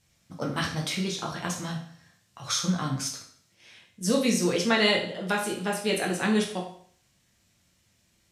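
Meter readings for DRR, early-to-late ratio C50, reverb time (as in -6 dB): -1.0 dB, 7.0 dB, 0.55 s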